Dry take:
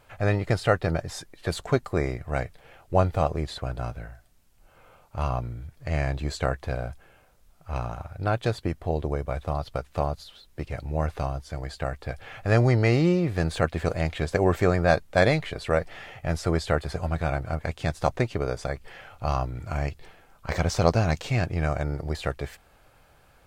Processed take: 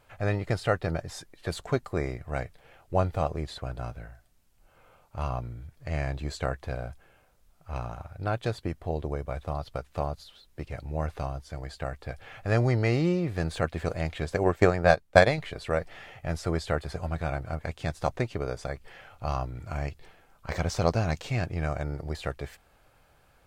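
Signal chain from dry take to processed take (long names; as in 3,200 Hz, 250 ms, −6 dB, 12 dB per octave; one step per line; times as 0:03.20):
0:14.43–0:15.38: transient designer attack +10 dB, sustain −10 dB
level −4 dB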